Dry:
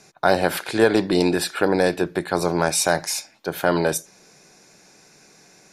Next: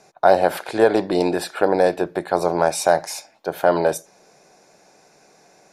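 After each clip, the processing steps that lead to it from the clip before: peaking EQ 670 Hz +11.5 dB 1.5 oct; trim -5.5 dB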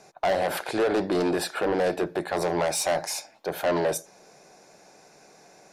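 in parallel at -1 dB: peak limiter -8.5 dBFS, peak gain reduction 7 dB; on the sum: saturation -13.5 dBFS, distortion -7 dB; trim -5.5 dB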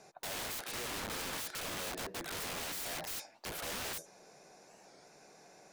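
integer overflow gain 30 dB; warped record 45 rpm, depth 160 cents; trim -5.5 dB

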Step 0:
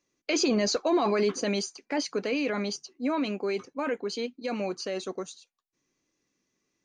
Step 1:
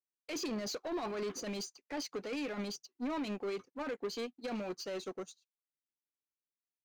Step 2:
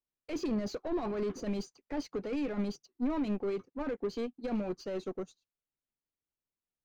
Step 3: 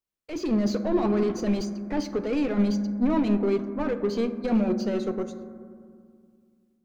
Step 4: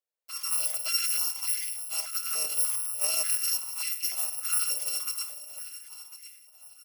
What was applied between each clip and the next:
peak limiter -26.5 dBFS, peak gain reduction 10.5 dB; waveshaping leveller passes 2; upward expansion 2.5:1, over -45 dBFS; trim -4.5 dB
tilt EQ -3 dB/octave
level rider gain up to 6.5 dB; on a send at -8 dB: reverberation RT60 2.2 s, pre-delay 5 ms; on the sum: trim +1.5 dB
bit-reversed sample order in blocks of 256 samples; feedback delay 1048 ms, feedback 32%, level -14 dB; step-sequenced high-pass 3.4 Hz 510–2000 Hz; trim -5 dB

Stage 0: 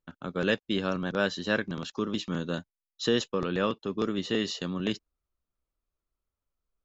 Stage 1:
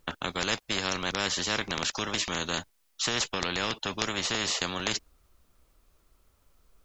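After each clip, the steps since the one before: spectrum-flattening compressor 4:1; trim +5 dB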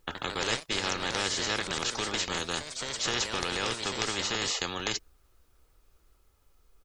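comb 2.4 ms, depth 31%; ever faster or slower copies 82 ms, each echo +2 st, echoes 3, each echo -6 dB; trim -2 dB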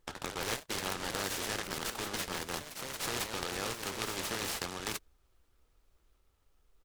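delay time shaken by noise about 1.8 kHz, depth 0.08 ms; trim -5.5 dB

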